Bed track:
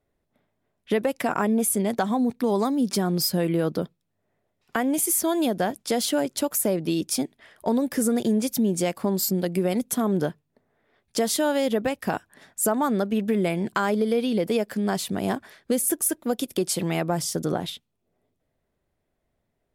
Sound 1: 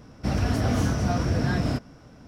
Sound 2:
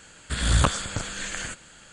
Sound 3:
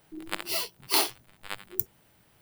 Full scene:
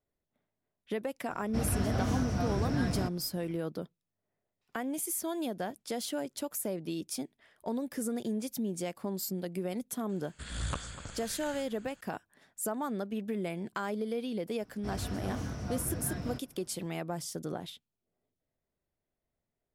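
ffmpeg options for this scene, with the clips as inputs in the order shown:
ffmpeg -i bed.wav -i cue0.wav -i cue1.wav -filter_complex "[1:a]asplit=2[link_01][link_02];[0:a]volume=-11.5dB[link_03];[2:a]asplit=2[link_04][link_05];[link_05]adelay=247,lowpass=frequency=2000:poles=1,volume=-12dB,asplit=2[link_06][link_07];[link_07]adelay=247,lowpass=frequency=2000:poles=1,volume=0.48,asplit=2[link_08][link_09];[link_09]adelay=247,lowpass=frequency=2000:poles=1,volume=0.48,asplit=2[link_10][link_11];[link_11]adelay=247,lowpass=frequency=2000:poles=1,volume=0.48,asplit=2[link_12][link_13];[link_13]adelay=247,lowpass=frequency=2000:poles=1,volume=0.48[link_14];[link_04][link_06][link_08][link_10][link_12][link_14]amix=inputs=6:normalize=0[link_15];[link_01]atrim=end=2.27,asetpts=PTS-STARTPTS,volume=-7.5dB,afade=type=in:duration=0.004:curve=hsin,afade=type=out:start_time=2.266:duration=0.004:curve=hsin,adelay=1300[link_16];[link_15]atrim=end=1.92,asetpts=PTS-STARTPTS,volume=-15dB,afade=type=in:duration=0.004:curve=hsin,afade=type=out:start_time=1.916:duration=0.004:curve=hsin,adelay=10090[link_17];[link_02]atrim=end=2.27,asetpts=PTS-STARTPTS,volume=-13.5dB,afade=type=in:duration=0.004:curve=hsin,afade=type=out:start_time=2.266:duration=0.004:curve=hsin,adelay=643860S[link_18];[link_03][link_16][link_17][link_18]amix=inputs=4:normalize=0" out.wav

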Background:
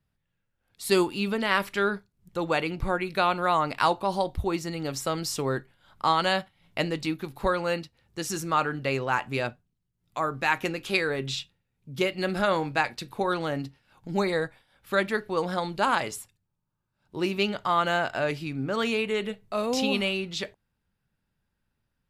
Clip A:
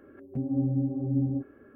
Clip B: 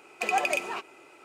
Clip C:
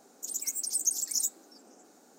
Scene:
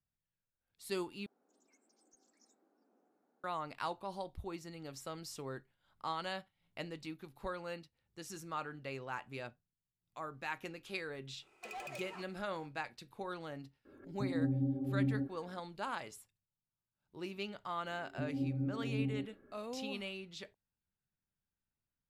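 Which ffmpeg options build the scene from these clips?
ffmpeg -i bed.wav -i cue0.wav -i cue1.wav -i cue2.wav -filter_complex "[1:a]asplit=2[link_01][link_02];[0:a]volume=-16dB[link_03];[3:a]lowpass=1700[link_04];[2:a]asoftclip=type=hard:threshold=-25.5dB[link_05];[link_03]asplit=2[link_06][link_07];[link_06]atrim=end=1.264[link_08];[link_04]atrim=end=2.18,asetpts=PTS-STARTPTS,volume=-17.5dB[link_09];[link_07]atrim=start=3.436[link_10];[link_05]atrim=end=1.24,asetpts=PTS-STARTPTS,volume=-16dB,afade=type=in:duration=0.004:curve=hsin,afade=type=out:start_time=1.236:duration=0.004:curve=hsin,adelay=11420[link_11];[link_01]atrim=end=1.75,asetpts=PTS-STARTPTS,volume=-6.5dB,afade=type=in:duration=0.004:curve=hsin,afade=type=out:start_time=1.746:duration=0.004:curve=hsin,adelay=13850[link_12];[link_02]atrim=end=1.75,asetpts=PTS-STARTPTS,volume=-9.5dB,afade=type=in:duration=0.004:curve=hsin,afade=type=out:start_time=1.746:duration=0.004:curve=hsin,adelay=17830[link_13];[link_08][link_09]acrossfade=duration=0.004:curve1=hsin:curve2=hsin[link_14];[link_14][link_10]acrossfade=duration=0.004:curve1=hsin:curve2=hsin[link_15];[link_15][link_11][link_12][link_13]amix=inputs=4:normalize=0" out.wav

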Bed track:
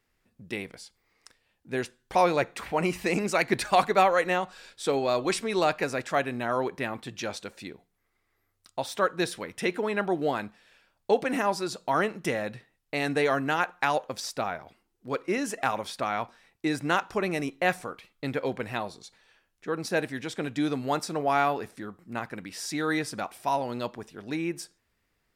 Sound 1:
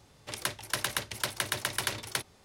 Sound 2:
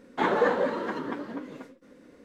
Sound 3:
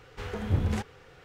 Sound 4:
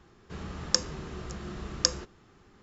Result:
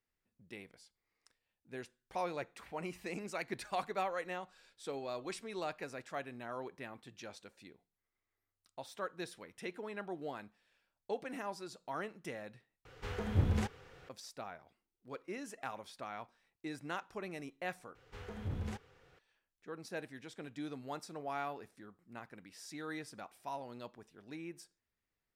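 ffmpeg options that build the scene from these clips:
ffmpeg -i bed.wav -i cue0.wav -i cue1.wav -i cue2.wav -filter_complex "[3:a]asplit=2[link_01][link_02];[0:a]volume=-15.5dB[link_03];[link_02]alimiter=limit=-19dB:level=0:latency=1:release=11[link_04];[link_03]asplit=3[link_05][link_06][link_07];[link_05]atrim=end=12.854[link_08];[link_01]atrim=end=1.24,asetpts=PTS-STARTPTS,volume=-4dB[link_09];[link_06]atrim=start=14.086:end=17.954[link_10];[link_04]atrim=end=1.24,asetpts=PTS-STARTPTS,volume=-11.5dB[link_11];[link_07]atrim=start=19.186[link_12];[link_08][link_09]acrossfade=duration=0.004:curve1=hsin:curve2=hsin[link_13];[link_13][link_10]acrossfade=duration=0.004:curve1=hsin:curve2=hsin[link_14];[link_14][link_11]acrossfade=duration=0.004:curve1=hsin:curve2=hsin[link_15];[link_15][link_12]acrossfade=duration=0.004:curve1=hsin:curve2=hsin" out.wav

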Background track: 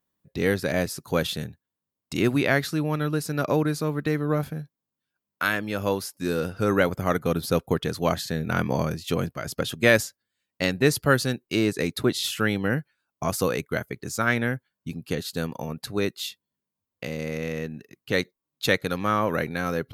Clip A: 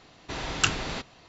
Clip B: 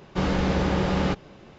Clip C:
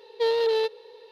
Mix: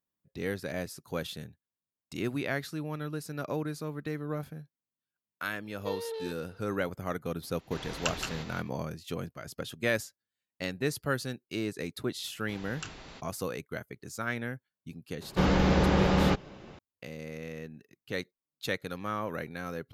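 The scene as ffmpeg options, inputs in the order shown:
ffmpeg -i bed.wav -i cue0.wav -i cue1.wav -i cue2.wav -filter_complex "[1:a]asplit=2[link_01][link_02];[0:a]volume=-10.5dB[link_03];[link_01]aecho=1:1:171|186:0.473|0.355[link_04];[link_02]alimiter=limit=-9dB:level=0:latency=1:release=18[link_05];[3:a]atrim=end=1.11,asetpts=PTS-STARTPTS,volume=-14.5dB,afade=type=in:duration=0.004:curve=hsin,afade=type=out:start_time=1.106:duration=0.004:curve=hsin,adelay=249165S[link_06];[link_04]atrim=end=1.28,asetpts=PTS-STARTPTS,volume=-9dB,afade=type=in:duration=0.004:curve=hsin,afade=type=out:start_time=1.276:duration=0.004:curve=hsin,adelay=7420[link_07];[link_05]atrim=end=1.28,asetpts=PTS-STARTPTS,volume=-15dB,afade=type=in:duration=0.004:curve=hsin,afade=type=out:start_time=1.276:duration=0.004:curve=hsin,adelay=12190[link_08];[2:a]atrim=end=1.58,asetpts=PTS-STARTPTS,volume=-0.5dB,afade=type=in:duration=0.004:curve=hsin,afade=type=out:start_time=1.576:duration=0.004:curve=hsin,adelay=15210[link_09];[link_03][link_06][link_07][link_08][link_09]amix=inputs=5:normalize=0" out.wav

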